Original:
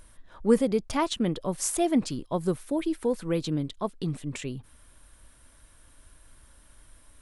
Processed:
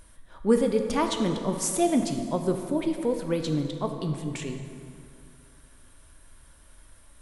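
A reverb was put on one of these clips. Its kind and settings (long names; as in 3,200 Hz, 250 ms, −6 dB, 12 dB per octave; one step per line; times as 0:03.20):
dense smooth reverb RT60 2.5 s, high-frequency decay 0.6×, DRR 4.5 dB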